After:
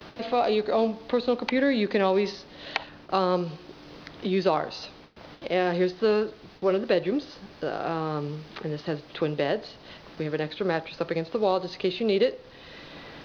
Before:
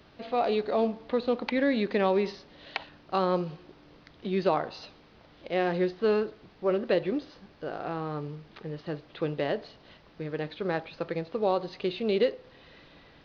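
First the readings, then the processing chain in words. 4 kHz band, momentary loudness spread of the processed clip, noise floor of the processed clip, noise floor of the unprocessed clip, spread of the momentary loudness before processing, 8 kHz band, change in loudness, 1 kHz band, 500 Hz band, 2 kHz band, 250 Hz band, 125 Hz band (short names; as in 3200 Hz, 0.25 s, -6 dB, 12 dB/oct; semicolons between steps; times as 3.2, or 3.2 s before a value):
+5.5 dB, 19 LU, -49 dBFS, -57 dBFS, 13 LU, n/a, +2.5 dB, +2.5 dB, +3.0 dB, +3.5 dB, +2.5 dB, +3.0 dB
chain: tone controls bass -1 dB, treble +6 dB; gate with hold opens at -46 dBFS; three-band squash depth 40%; gain +3 dB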